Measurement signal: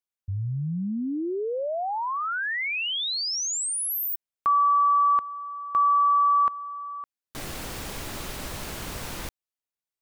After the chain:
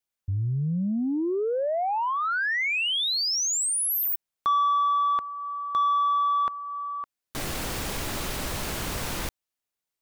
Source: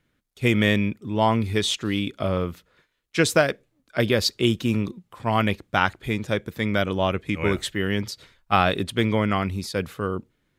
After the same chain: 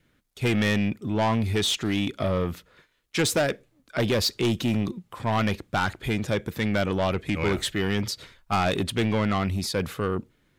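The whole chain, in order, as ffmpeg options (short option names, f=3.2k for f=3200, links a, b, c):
-filter_complex "[0:a]adynamicequalizer=threshold=0.0141:dfrequency=1100:dqfactor=6.1:tfrequency=1100:tqfactor=6.1:attack=5:release=100:ratio=0.375:range=3.5:mode=cutabove:tftype=bell,asplit=2[a][b];[b]acompressor=threshold=-32dB:ratio=6:attack=4.9:release=22:knee=1:detection=rms,volume=-3dB[c];[a][c]amix=inputs=2:normalize=0,asoftclip=type=tanh:threshold=-18dB"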